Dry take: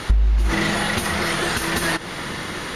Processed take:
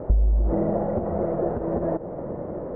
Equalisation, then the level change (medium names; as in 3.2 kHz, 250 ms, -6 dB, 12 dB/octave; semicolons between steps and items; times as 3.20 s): four-pole ladder low-pass 660 Hz, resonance 60%; distance through air 71 m; +8.0 dB